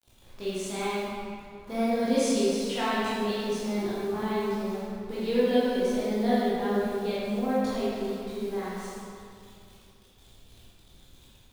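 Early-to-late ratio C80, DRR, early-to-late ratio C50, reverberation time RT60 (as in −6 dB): −2.5 dB, −10.5 dB, −5.0 dB, 2.5 s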